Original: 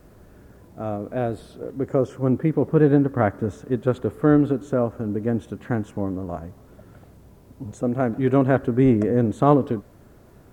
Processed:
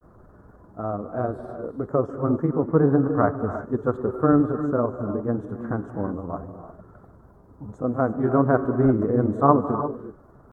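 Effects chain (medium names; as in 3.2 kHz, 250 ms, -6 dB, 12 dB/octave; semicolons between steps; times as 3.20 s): resonant high shelf 1.8 kHz -13 dB, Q 3; gated-style reverb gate 370 ms rising, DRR 9 dB; granulator 100 ms, grains 20 per s, spray 11 ms, pitch spread up and down by 0 st; trim -1.5 dB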